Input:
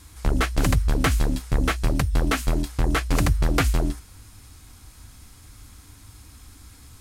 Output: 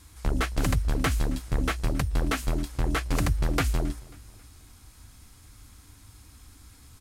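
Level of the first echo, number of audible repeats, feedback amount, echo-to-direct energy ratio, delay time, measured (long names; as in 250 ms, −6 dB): −23.0 dB, 2, 46%, −22.0 dB, 270 ms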